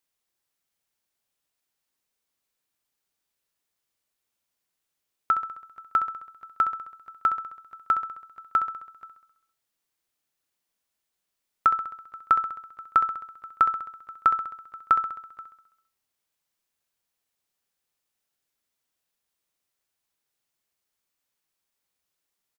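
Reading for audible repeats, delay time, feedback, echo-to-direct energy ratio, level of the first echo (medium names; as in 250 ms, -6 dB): 6, 66 ms, 59%, -8.5 dB, -10.5 dB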